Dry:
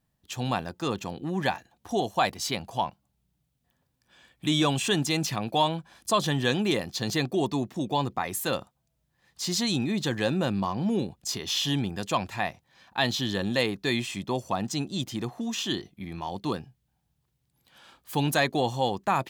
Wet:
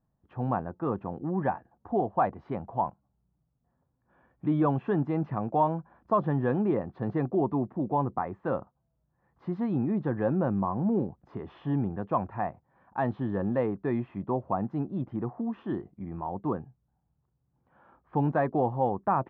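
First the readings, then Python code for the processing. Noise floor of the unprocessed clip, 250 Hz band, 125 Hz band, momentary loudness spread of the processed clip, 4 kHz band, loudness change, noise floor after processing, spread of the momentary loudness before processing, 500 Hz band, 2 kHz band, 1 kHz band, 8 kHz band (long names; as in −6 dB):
−76 dBFS, 0.0 dB, 0.0 dB, 9 LU, below −30 dB, −2.0 dB, −76 dBFS, 8 LU, 0.0 dB, −11.0 dB, −0.5 dB, below −40 dB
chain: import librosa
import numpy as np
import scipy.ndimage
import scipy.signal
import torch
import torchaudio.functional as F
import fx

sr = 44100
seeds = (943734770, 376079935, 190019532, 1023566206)

y = scipy.signal.sosfilt(scipy.signal.butter(4, 1300.0, 'lowpass', fs=sr, output='sos'), x)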